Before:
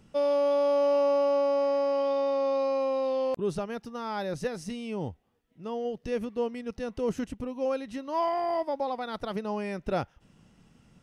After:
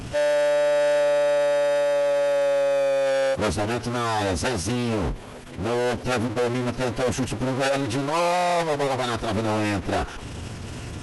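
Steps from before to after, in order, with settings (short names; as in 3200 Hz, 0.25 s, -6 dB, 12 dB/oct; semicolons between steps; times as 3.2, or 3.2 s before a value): power-law curve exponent 0.35; formant-preserving pitch shift -11.5 st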